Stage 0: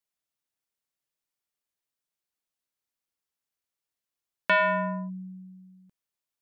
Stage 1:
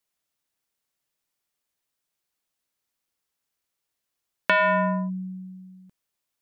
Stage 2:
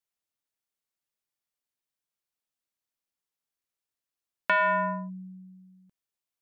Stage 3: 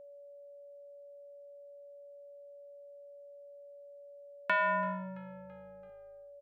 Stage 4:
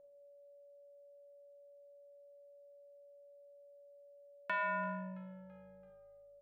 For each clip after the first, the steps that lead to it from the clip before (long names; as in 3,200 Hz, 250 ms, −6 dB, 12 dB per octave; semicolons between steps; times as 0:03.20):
downward compressor 4 to 1, threshold −25 dBFS, peak gain reduction 5.5 dB; level +6.5 dB
dynamic equaliser 1,200 Hz, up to +8 dB, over −35 dBFS, Q 0.84; level −9 dB
echo with shifted repeats 334 ms, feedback 53%, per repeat −53 Hz, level −21.5 dB; steady tone 570 Hz −44 dBFS; level −5.5 dB
convolution reverb RT60 1.1 s, pre-delay 6 ms, DRR 5.5 dB; level −8.5 dB